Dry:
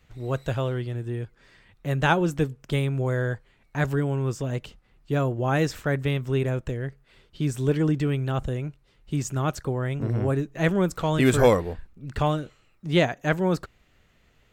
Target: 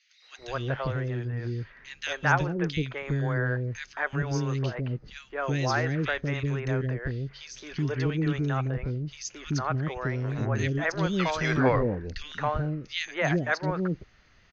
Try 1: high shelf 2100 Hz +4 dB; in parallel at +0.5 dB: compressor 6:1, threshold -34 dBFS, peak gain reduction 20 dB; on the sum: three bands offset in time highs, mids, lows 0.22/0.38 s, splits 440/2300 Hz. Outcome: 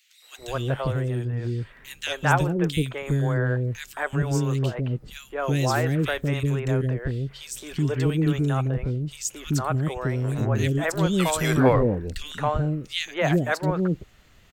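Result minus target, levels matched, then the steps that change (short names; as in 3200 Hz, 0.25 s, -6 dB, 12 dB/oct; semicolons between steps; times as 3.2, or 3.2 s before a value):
8000 Hz band +4.5 dB
add first: rippled Chebyshev low-pass 6500 Hz, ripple 6 dB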